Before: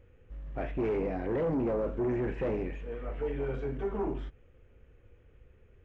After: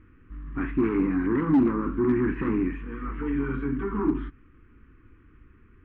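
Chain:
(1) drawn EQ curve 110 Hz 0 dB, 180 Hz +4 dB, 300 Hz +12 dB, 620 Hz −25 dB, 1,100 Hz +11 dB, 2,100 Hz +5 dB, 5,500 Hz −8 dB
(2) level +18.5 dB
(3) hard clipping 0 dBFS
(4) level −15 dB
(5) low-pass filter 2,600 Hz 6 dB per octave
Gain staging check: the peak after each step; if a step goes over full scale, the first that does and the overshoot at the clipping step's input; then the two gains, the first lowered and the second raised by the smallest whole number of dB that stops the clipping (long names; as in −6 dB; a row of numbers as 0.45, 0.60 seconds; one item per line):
−13.0, +5.5, 0.0, −15.0, −15.0 dBFS
step 2, 5.5 dB
step 2 +12.5 dB, step 4 −9 dB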